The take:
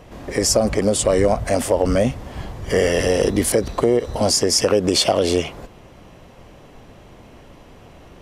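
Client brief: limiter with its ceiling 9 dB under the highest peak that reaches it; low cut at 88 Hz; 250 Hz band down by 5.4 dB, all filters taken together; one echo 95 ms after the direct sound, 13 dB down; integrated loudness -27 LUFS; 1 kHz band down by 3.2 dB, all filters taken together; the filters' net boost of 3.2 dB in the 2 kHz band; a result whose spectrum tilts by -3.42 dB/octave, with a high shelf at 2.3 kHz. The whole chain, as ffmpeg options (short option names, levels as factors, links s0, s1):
-af "highpass=88,equalizer=f=250:t=o:g=-7,equalizer=f=1000:t=o:g=-5,equalizer=f=2000:t=o:g=7,highshelf=f=2300:g=-4,alimiter=limit=0.2:level=0:latency=1,aecho=1:1:95:0.224,volume=0.708"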